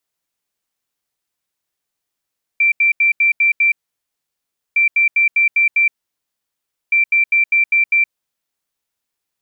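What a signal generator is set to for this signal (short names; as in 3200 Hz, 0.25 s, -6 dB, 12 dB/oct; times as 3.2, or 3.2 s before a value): beep pattern sine 2350 Hz, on 0.12 s, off 0.08 s, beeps 6, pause 1.04 s, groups 3, -10 dBFS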